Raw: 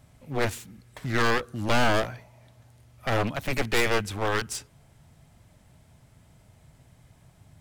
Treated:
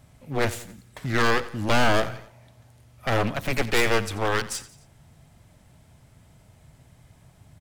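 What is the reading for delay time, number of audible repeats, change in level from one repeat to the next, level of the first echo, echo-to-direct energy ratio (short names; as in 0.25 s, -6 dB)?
88 ms, 3, -6.0 dB, -17.0 dB, -16.0 dB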